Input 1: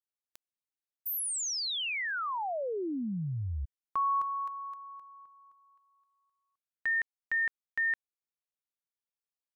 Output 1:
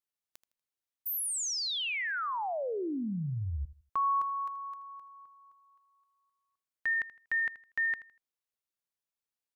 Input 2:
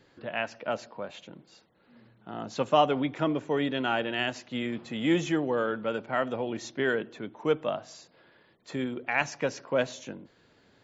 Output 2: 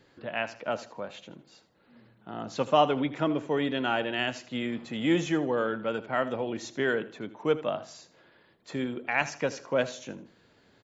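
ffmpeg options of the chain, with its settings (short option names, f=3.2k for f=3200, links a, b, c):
-af "aecho=1:1:80|160|240:0.158|0.0428|0.0116"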